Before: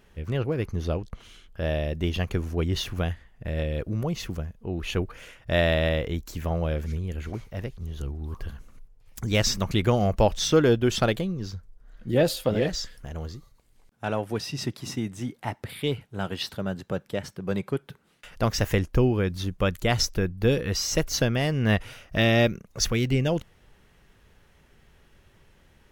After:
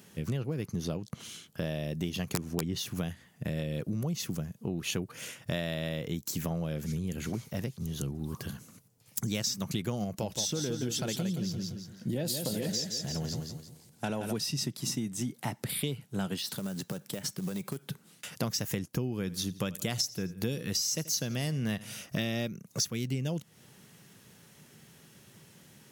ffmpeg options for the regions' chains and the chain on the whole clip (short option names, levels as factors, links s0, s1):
-filter_complex "[0:a]asettb=1/sr,asplit=3[s0][s1][s2];[s0]atrim=end=2.344[s3];[s1]atrim=start=2.34:end=2.78,asetpts=PTS-STARTPTS,afade=t=in:d=0.004:c=qsin,afade=t=out:st=0.436:d=0.004:c=qsin,aemphasis=mode=reproduction:type=cd,acontrast=33,aeval=exprs='(mod(3.16*val(0)+1,2)-1)/3.16':c=same[s4];[s2]atrim=start=2.776[s5];[s3][s4]acrossfade=d=0.004:c1=hsin:c2=qsin[s6];[s6][s5]acrossfade=d=0.004:c1=qsin:c2=hsin,asettb=1/sr,asplit=3[s7][s8][s9];[s7]atrim=end=10.044[s10];[s8]atrim=start=10.04:end=14.33,asetpts=PTS-STARTPTS,afade=t=in:d=0.004:c=qsin,afade=t=out:st=4.286:d=0.004:c=qsin,acompressor=threshold=0.0631:ratio=2:attack=3.2:release=140:knee=1:detection=peak,bandreject=f=1200:w=8.3,aecho=1:1:171|342|513|684:0.473|0.156|0.0515|0.017,atrim=end_sample=189189[s11];[s9]atrim=start=14.326[s12];[s10][s11]acrossfade=d=0.004:c1=hsin:c2=qsin[s13];[s13][s12]acrossfade=d=0.004:c1=qsin:c2=hsin,asettb=1/sr,asplit=3[s14][s15][s16];[s14]atrim=end=16.384[s17];[s15]atrim=start=16.38:end=17.86,asetpts=PTS-STARTPTS,afade=t=in:d=0.004:c=qsin,afade=t=out:st=1.476:d=0.004:c=qsin,lowshelf=f=230:g=-5,acompressor=threshold=0.0178:ratio=8:attack=3.2:release=140:knee=1:detection=peak,acrusher=bits=5:mode=log:mix=0:aa=0.000001[s18];[s16]atrim=start=17.856[s19];[s17][s18]acrossfade=d=0.004:c1=hsin:c2=qsin[s20];[s20][s19]acrossfade=d=0.004:c1=qsin:c2=hsin,asettb=1/sr,asplit=3[s21][s22][s23];[s21]atrim=end=19.124[s24];[s22]atrim=start=19.12:end=22.06,asetpts=PTS-STARTPTS,afade=t=in:d=0.004:c=qsin,afade=t=out:st=2.936:d=0.004:c=qsin,equalizer=f=8600:w=0.33:g=3.5,aecho=1:1:83|166|249:0.0944|0.0425|0.0191,atrim=end_sample=129654[s25];[s23]atrim=start=22.056[s26];[s24][s25]acrossfade=d=0.004:c1=hsin:c2=qsin[s27];[s27][s26]acrossfade=d=0.004:c1=qsin:c2=hsin,highpass=f=140:w=0.5412,highpass=f=140:w=1.3066,bass=f=250:g=11,treble=f=4000:g=14,acompressor=threshold=0.0316:ratio=6"